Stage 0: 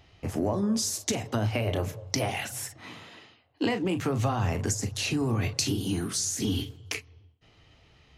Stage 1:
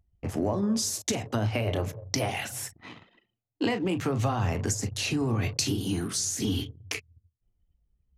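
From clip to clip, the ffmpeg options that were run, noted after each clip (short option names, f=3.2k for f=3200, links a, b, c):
-af "anlmdn=0.1"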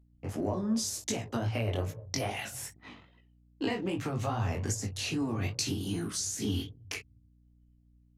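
-af "flanger=delay=17.5:depth=4.4:speed=2.5,aeval=exprs='val(0)+0.001*(sin(2*PI*60*n/s)+sin(2*PI*2*60*n/s)/2+sin(2*PI*3*60*n/s)/3+sin(2*PI*4*60*n/s)/4+sin(2*PI*5*60*n/s)/5)':c=same,volume=-1.5dB"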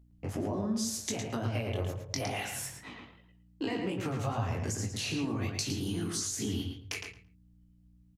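-filter_complex "[0:a]acompressor=threshold=-37dB:ratio=2,asplit=2[a][b];[b]adelay=111,lowpass=f=4.2k:p=1,volume=-4dB,asplit=2[c][d];[d]adelay=111,lowpass=f=4.2k:p=1,volume=0.18,asplit=2[e][f];[f]adelay=111,lowpass=f=4.2k:p=1,volume=0.18[g];[c][e][g]amix=inputs=3:normalize=0[h];[a][h]amix=inputs=2:normalize=0,volume=2.5dB"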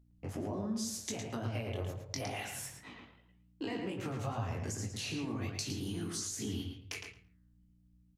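-af "flanger=delay=8.7:depth=5.2:regen=-90:speed=1.4:shape=sinusoidal"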